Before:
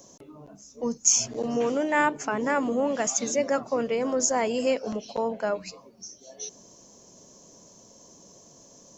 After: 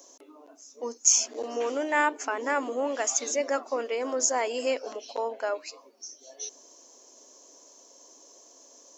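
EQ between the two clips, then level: brick-wall FIR high-pass 240 Hz; low shelf 370 Hz -8.5 dB; 0.0 dB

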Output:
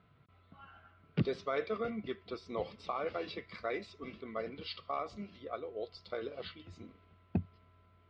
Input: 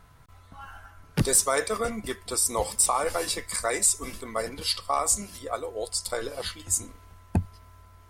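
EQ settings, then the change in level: air absorption 320 m; speaker cabinet 150–4400 Hz, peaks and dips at 280 Hz -4 dB, 520 Hz -4 dB, 1700 Hz -9 dB; bell 910 Hz -14 dB 0.58 oct; -2.5 dB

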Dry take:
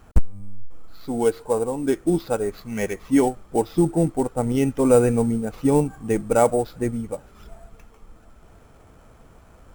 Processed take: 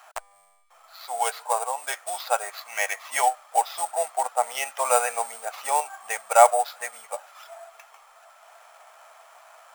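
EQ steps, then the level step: elliptic high-pass 660 Hz, stop band 50 dB; notch 1500 Hz, Q 25; +7.5 dB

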